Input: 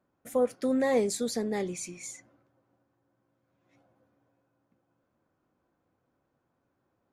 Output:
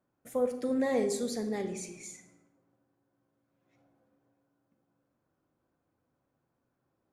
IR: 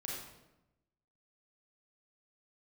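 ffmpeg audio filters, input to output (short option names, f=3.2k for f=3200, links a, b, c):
-filter_complex "[0:a]asplit=2[a][b];[1:a]atrim=start_sample=2205,lowshelf=f=490:g=4.5[c];[b][c]afir=irnorm=-1:irlink=0,volume=-5dB[d];[a][d]amix=inputs=2:normalize=0,volume=-7dB"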